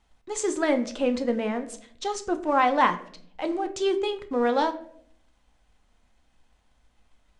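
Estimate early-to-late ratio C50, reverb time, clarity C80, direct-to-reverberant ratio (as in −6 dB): 14.0 dB, 0.65 s, 17.5 dB, 7.0 dB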